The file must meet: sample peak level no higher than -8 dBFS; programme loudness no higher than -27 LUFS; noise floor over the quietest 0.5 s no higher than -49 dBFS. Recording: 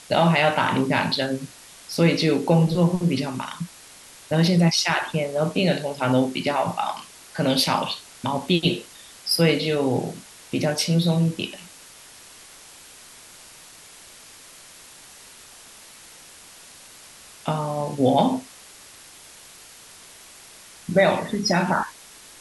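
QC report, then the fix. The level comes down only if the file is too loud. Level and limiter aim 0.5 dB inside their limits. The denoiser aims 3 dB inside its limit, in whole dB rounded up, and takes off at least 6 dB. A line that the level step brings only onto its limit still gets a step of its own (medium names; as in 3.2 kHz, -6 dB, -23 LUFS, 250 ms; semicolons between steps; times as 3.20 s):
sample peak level -5.0 dBFS: fail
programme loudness -22.5 LUFS: fail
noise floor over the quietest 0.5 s -46 dBFS: fail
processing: trim -5 dB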